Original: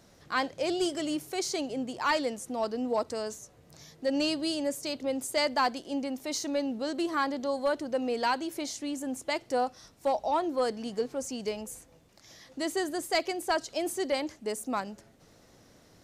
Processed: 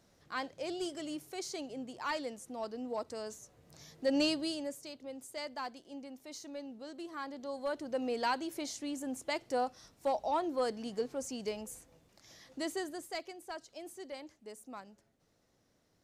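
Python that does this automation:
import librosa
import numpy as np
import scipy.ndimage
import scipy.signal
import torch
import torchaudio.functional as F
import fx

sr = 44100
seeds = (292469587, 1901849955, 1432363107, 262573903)

y = fx.gain(x, sr, db=fx.line((2.96, -9.0), (4.22, -1.0), (4.96, -14.0), (7.12, -14.0), (8.02, -4.5), (12.6, -4.5), (13.36, -15.5)))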